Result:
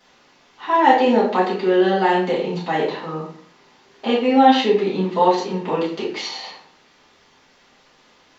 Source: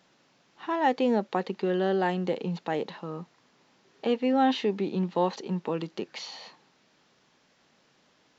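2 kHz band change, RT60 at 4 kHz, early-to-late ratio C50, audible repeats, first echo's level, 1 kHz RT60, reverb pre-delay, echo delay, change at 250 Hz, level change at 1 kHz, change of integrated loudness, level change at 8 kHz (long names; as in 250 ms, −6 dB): +11.0 dB, 0.40 s, 4.5 dB, no echo audible, no echo audible, 0.50 s, 3 ms, no echo audible, +8.0 dB, +12.5 dB, +10.0 dB, can't be measured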